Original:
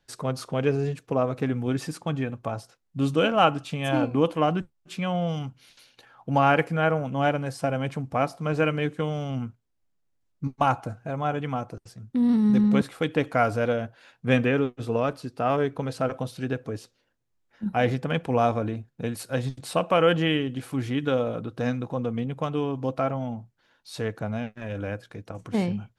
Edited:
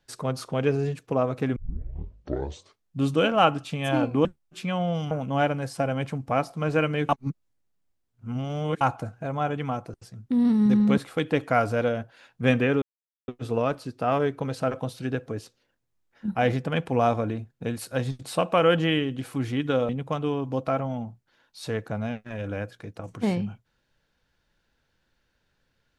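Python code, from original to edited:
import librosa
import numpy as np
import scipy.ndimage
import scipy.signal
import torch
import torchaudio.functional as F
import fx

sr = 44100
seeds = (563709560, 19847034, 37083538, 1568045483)

y = fx.edit(x, sr, fx.tape_start(start_s=1.56, length_s=1.41),
    fx.cut(start_s=4.25, length_s=0.34),
    fx.cut(start_s=5.45, length_s=1.5),
    fx.reverse_span(start_s=8.93, length_s=1.72),
    fx.insert_silence(at_s=14.66, length_s=0.46),
    fx.cut(start_s=21.27, length_s=0.93), tone=tone)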